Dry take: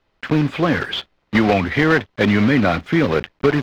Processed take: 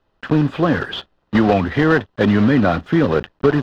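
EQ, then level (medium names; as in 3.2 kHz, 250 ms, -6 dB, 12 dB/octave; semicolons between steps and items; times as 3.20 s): peaking EQ 2.2 kHz -11.5 dB 0.24 oct; treble shelf 3.4 kHz -8.5 dB; +1.5 dB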